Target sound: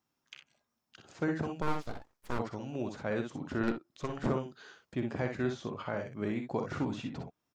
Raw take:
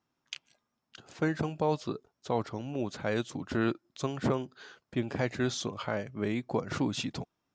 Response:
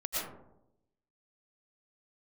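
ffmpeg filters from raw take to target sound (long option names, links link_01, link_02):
-filter_complex "[0:a]acrossover=split=2400[link_01][link_02];[link_02]acompressor=threshold=-57dB:ratio=10[link_03];[link_01][link_03]amix=inputs=2:normalize=0,highshelf=frequency=6500:gain=9.5,aecho=1:1:48|61:0.251|0.473,asplit=3[link_04][link_05][link_06];[link_04]afade=type=out:start_time=1.61:duration=0.02[link_07];[link_05]aeval=exprs='abs(val(0))':channel_layout=same,afade=type=in:start_time=1.61:duration=0.02,afade=type=out:start_time=2.38:duration=0.02[link_08];[link_06]afade=type=in:start_time=2.38:duration=0.02[link_09];[link_07][link_08][link_09]amix=inputs=3:normalize=0,asettb=1/sr,asplit=3[link_10][link_11][link_12];[link_10]atrim=end=3.634[link_13];[link_11]atrim=start=3.63:end=4.27,asetpts=PTS-STARTPTS,afade=type=in:duration=0.004:curve=qsin,afade=type=out:start_time=0.636:duration=0.004:curve=qsin,aeval=exprs='0.15*(cos(1*acos(clip(val(0)/0.15,-1,1)))-cos(1*PI/2))+0.0299*(cos(4*acos(clip(val(0)/0.15,-1,1)))-cos(4*PI/2))':channel_layout=same[link_14];[link_12]atrim=start=4.266[link_15];[link_13][link_14]acrossfade=duration=0.004:curve1=hsin:curve2=qsin[link_16];[link_16][link_15]acrossfade=duration=0.004:curve1=qsin:curve2=hsin,volume=-3.5dB"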